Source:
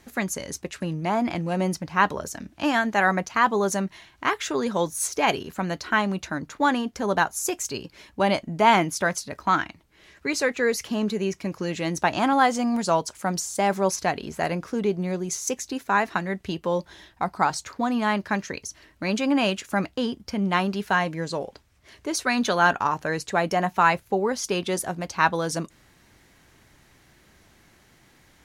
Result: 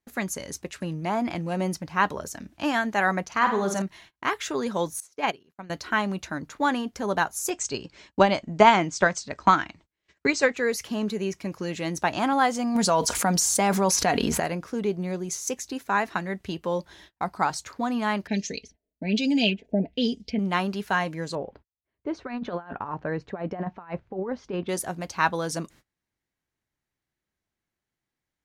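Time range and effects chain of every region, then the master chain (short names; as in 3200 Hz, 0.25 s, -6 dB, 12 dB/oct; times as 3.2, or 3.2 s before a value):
3.24–3.82 high shelf 9000 Hz -9 dB + flutter echo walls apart 8.7 m, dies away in 0.46 s
5–5.7 HPF 110 Hz + high shelf 7000 Hz -7.5 dB + upward expander 2.5:1, over -33 dBFS
7.5–10.56 steep low-pass 8500 Hz 96 dB/oct + transient shaper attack +9 dB, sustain +1 dB
12.75–14.4 comb 4.2 ms, depth 35% + fast leveller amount 70%
18.27–20.39 comb 4.5 ms, depth 75% + LFO low-pass sine 1.2 Hz 600–6900 Hz + Butterworth band-stop 1200 Hz, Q 0.65
21.35–24.69 expander -54 dBFS + negative-ratio compressor -25 dBFS, ratio -0.5 + tape spacing loss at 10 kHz 45 dB
whole clip: high shelf 11000 Hz +2 dB; gate -48 dBFS, range -28 dB; gain -2.5 dB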